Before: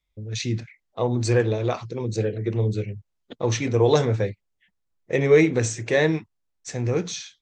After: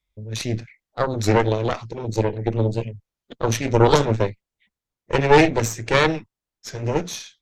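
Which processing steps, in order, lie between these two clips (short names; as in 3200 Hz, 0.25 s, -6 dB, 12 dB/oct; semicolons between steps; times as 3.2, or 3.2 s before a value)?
added harmonics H 4 -6 dB, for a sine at -5.5 dBFS; record warp 33 1/3 rpm, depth 160 cents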